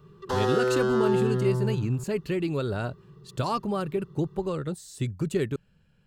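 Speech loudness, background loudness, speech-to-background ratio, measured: -30.0 LUFS, -26.5 LUFS, -3.5 dB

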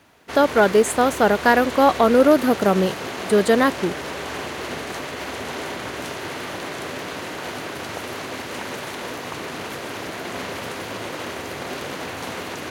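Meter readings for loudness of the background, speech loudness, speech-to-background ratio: -30.0 LUFS, -18.0 LUFS, 12.0 dB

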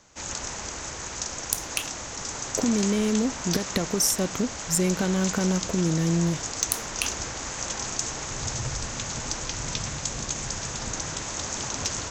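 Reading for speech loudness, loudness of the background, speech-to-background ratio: -26.5 LUFS, -30.5 LUFS, 4.0 dB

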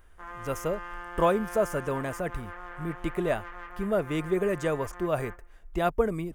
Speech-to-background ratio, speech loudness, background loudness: 12.5 dB, -30.0 LUFS, -42.5 LUFS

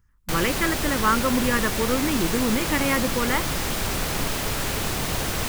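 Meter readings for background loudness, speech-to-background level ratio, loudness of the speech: -26.0 LUFS, 1.0 dB, -25.0 LUFS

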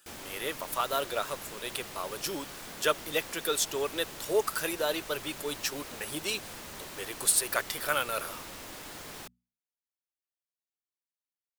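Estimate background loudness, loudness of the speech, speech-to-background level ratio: -42.5 LUFS, -31.5 LUFS, 11.0 dB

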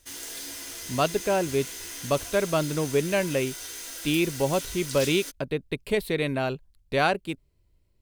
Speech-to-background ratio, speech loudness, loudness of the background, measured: 8.5 dB, -27.0 LUFS, -35.5 LUFS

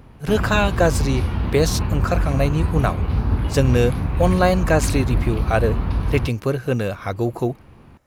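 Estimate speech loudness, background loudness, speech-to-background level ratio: -21.5 LUFS, -23.5 LUFS, 2.0 dB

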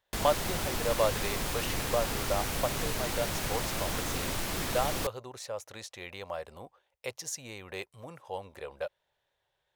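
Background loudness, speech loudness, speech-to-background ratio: -33.0 LUFS, -36.0 LUFS, -3.0 dB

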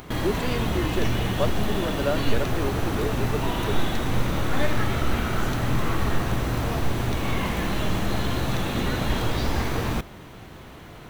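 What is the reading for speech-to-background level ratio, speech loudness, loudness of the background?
-4.5 dB, -31.0 LUFS, -26.5 LUFS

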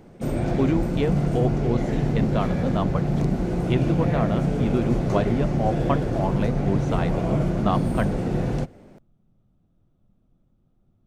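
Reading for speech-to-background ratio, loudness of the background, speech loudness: -3.0 dB, -24.5 LUFS, -27.5 LUFS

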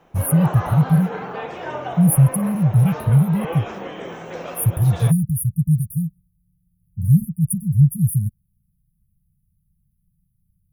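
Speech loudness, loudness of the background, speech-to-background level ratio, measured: -18.5 LUFS, -31.0 LUFS, 12.5 dB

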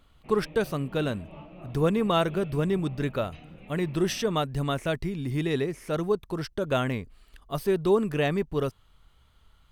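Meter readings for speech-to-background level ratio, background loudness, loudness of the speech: 19.5 dB, -47.5 LUFS, -28.0 LUFS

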